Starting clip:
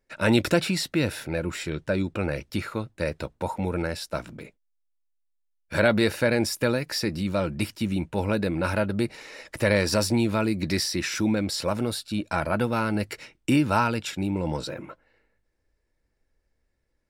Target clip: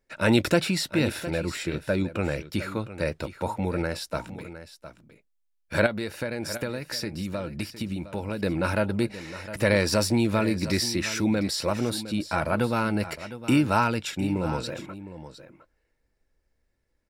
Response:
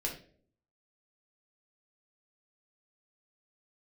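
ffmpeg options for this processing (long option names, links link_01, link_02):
-filter_complex "[0:a]asettb=1/sr,asplit=3[link_01][link_02][link_03];[link_01]atrim=end=5.864[link_04];[link_02]atrim=start=5.86:end=8.43,asetpts=PTS-STARTPTS,afade=type=in:duration=0.004:curve=qsin,afade=type=out:start_time=2.566:duration=0.004:curve=qsin,acompressor=threshold=-28dB:ratio=6[link_05];[link_03]atrim=start=8.426[link_06];[link_04][link_05]acrossfade=duration=0.004:curve1=hsin:curve2=qsin[link_07];[link_07][link_06]acrossfade=duration=0.004:curve1=qsin:curve2=hsin,aecho=1:1:710:0.211"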